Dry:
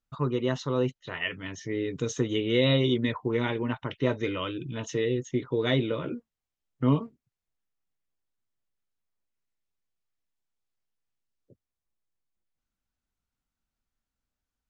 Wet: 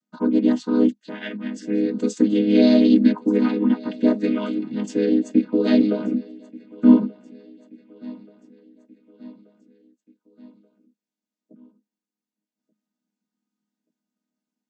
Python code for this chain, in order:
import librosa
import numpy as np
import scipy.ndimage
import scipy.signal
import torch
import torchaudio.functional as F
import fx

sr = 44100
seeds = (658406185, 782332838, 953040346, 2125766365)

y = fx.chord_vocoder(x, sr, chord='minor triad', root=56)
y = fx.bass_treble(y, sr, bass_db=11, treble_db=10)
y = fx.echo_feedback(y, sr, ms=1181, feedback_pct=53, wet_db=-22)
y = F.gain(torch.from_numpy(y), 6.0).numpy()